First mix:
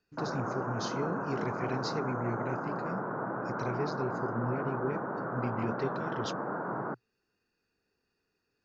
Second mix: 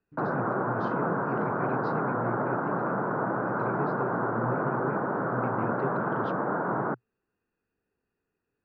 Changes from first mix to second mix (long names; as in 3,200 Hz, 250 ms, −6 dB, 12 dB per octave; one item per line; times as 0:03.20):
speech: add high-frequency loss of the air 500 metres
background +6.5 dB